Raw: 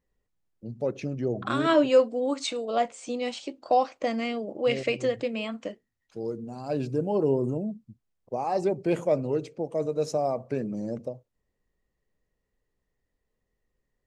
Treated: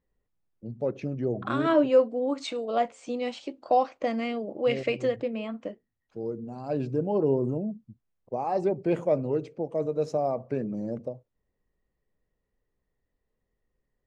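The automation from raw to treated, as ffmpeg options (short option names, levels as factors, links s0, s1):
-af "asetnsamples=n=441:p=0,asendcmd='1.69 lowpass f 1300;2.38 lowpass f 2800;5.16 lowpass f 1200;6.44 lowpass f 2100',lowpass=f=2000:p=1"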